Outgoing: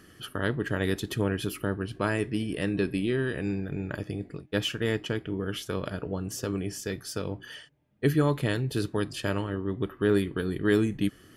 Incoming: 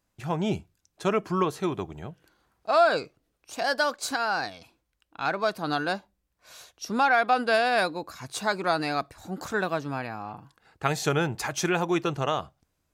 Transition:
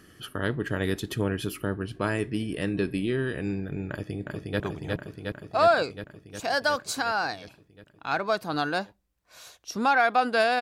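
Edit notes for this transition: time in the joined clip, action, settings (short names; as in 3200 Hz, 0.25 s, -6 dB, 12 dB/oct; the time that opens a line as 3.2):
outgoing
3.9–4.6 echo throw 0.36 s, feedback 75%, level -2.5 dB
4.6 switch to incoming from 1.74 s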